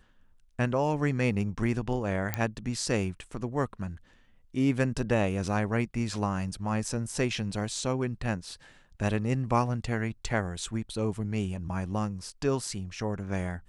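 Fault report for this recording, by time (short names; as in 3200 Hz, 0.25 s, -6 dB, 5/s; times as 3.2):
2.34 pop -12 dBFS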